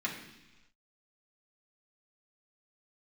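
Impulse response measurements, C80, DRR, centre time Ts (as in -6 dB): 8.5 dB, -4.5 dB, 31 ms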